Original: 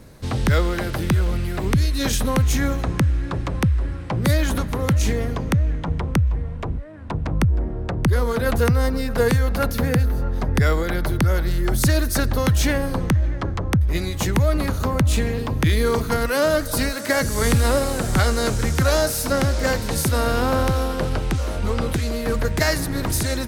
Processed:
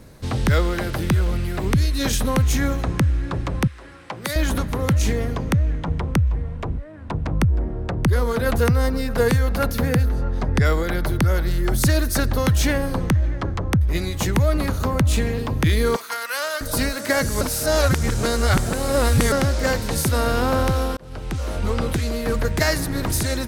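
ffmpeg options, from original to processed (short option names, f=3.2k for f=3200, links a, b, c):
-filter_complex "[0:a]asettb=1/sr,asplit=3[a][b][c];[a]atrim=end=3.674[d];[b]atrim=start=3.67:end=4.36,asetpts=PTS-STARTPTS,afade=t=in:d=0.004:c=qsin,afade=t=out:st=0.686:d=0.004:c=qsin,highpass=f=860:p=1[e];[c]atrim=start=4.356[f];[d][e]acrossfade=d=0.004:c1=hsin:c2=qsin[g];[g][f]acrossfade=d=0.004:c1=qsin:c2=hsin,asettb=1/sr,asplit=3[h][i][j];[h]atrim=end=10.094[k];[i]atrim=start=10.09:end=10.65,asetpts=PTS-STARTPTS,afade=t=in:d=0.004:c=qsin,afade=t=out:st=0.556:d=0.004:c=qsin,lowpass=8.7k[l];[j]atrim=start=10.646[m];[k][l]acrossfade=d=0.004:c1=hsin:c2=qsin[n];[n][m]acrossfade=d=0.004:c1=qsin:c2=hsin,asettb=1/sr,asplit=3[o][p][q];[o]atrim=end=15.964[r];[p]atrim=start=15.96:end=16.61,asetpts=PTS-STARTPTS,afade=t=in:d=0.004:c=qsin,afade=t=out:st=0.646:d=0.004:c=qsin,highpass=1.1k[s];[q]atrim=start=16.606[t];[r][s]acrossfade=d=0.004:c1=hsin:c2=qsin[u];[u][t]acrossfade=d=0.004:c1=qsin:c2=hsin,asplit=4[v][w][x][y];[v]atrim=end=17.412[z];[w]atrim=start=17.408:end=19.322,asetpts=PTS-STARTPTS,areverse[aa];[x]atrim=start=19.318:end=20.97,asetpts=PTS-STARTPTS,afade=t=out:st=1.648:d=0.004:c=hsin[ab];[y]atrim=start=20.97,asetpts=PTS-STARTPTS,afade=t=in:d=0.59[ac];[z][aa]acrossfade=d=0.004:c1=hsin:c2=hsin[ad];[ab][ac]concat=n=2:v=0:a=1[ae];[ad][ae]acrossfade=d=0.004:c1=hsin:c2=hsin"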